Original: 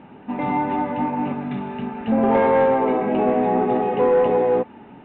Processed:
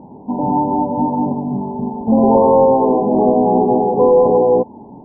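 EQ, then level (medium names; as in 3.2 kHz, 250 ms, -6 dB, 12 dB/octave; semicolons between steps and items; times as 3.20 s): brick-wall FIR low-pass 1.1 kHz; distance through air 390 m; +7.0 dB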